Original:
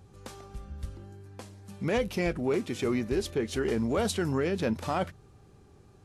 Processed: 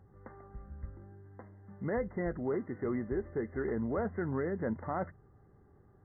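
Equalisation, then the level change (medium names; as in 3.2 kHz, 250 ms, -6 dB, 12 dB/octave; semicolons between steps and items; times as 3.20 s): brick-wall FIR low-pass 2.1 kHz; -5.5 dB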